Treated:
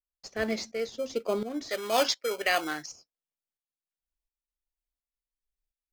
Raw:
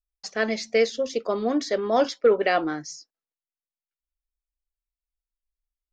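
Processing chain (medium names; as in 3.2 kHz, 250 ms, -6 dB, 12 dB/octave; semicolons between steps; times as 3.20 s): in parallel at -11.5 dB: sample-and-hold 24×; 1.69–2.92 s: on the sum: tilt shelf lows -10 dB, about 690 Hz; tremolo saw up 1.4 Hz, depth 80%; peaking EQ 1.2 kHz -3 dB 0.77 oct; trim -2.5 dB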